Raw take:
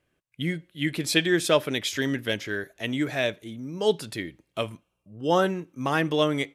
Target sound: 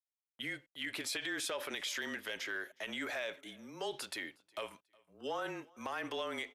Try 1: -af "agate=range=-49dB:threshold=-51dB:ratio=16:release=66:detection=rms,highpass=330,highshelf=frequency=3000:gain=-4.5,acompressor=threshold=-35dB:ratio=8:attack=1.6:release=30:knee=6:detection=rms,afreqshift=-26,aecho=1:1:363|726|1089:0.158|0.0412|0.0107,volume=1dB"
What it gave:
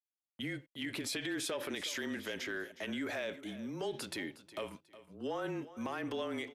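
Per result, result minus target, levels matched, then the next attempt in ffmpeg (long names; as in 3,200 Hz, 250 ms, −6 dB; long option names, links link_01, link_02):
echo-to-direct +11 dB; 250 Hz band +6.0 dB
-af "agate=range=-49dB:threshold=-51dB:ratio=16:release=66:detection=rms,highpass=330,highshelf=frequency=3000:gain=-4.5,acompressor=threshold=-35dB:ratio=8:attack=1.6:release=30:knee=6:detection=rms,afreqshift=-26,aecho=1:1:363|726:0.0447|0.0116,volume=1dB"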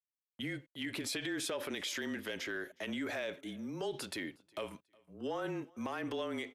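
250 Hz band +6.0 dB
-af "agate=range=-49dB:threshold=-51dB:ratio=16:release=66:detection=rms,highpass=680,highshelf=frequency=3000:gain=-4.5,acompressor=threshold=-35dB:ratio=8:attack=1.6:release=30:knee=6:detection=rms,afreqshift=-26,aecho=1:1:363|726:0.0447|0.0116,volume=1dB"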